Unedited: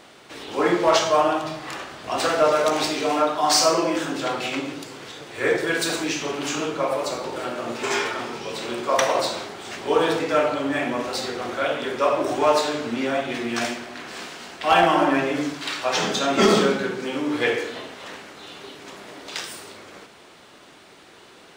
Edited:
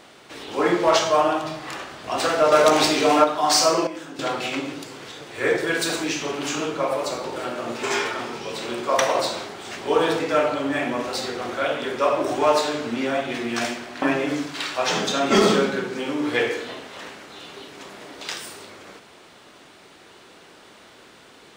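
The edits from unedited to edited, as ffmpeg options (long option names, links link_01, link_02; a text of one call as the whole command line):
ffmpeg -i in.wav -filter_complex "[0:a]asplit=6[link_01][link_02][link_03][link_04][link_05][link_06];[link_01]atrim=end=2.522[link_07];[link_02]atrim=start=2.518:end=3.242,asetpts=PTS-STARTPTS,volume=5dB[link_08];[link_03]atrim=start=3.238:end=3.872[link_09];[link_04]atrim=start=3.868:end=4.192,asetpts=PTS-STARTPTS,volume=-10.5dB[link_10];[link_05]atrim=start=4.188:end=14.022[link_11];[link_06]atrim=start=15.088[link_12];[link_07][link_08]acrossfade=duration=0.004:curve1=hsin:curve2=hsin[link_13];[link_13][link_09]acrossfade=duration=0.004:curve1=hsin:curve2=hsin[link_14];[link_14][link_10]acrossfade=duration=0.004:curve1=hsin:curve2=hsin[link_15];[link_15][link_11]acrossfade=duration=0.004:curve1=hsin:curve2=hsin[link_16];[link_16][link_12]acrossfade=duration=0.004:curve1=hsin:curve2=hsin" out.wav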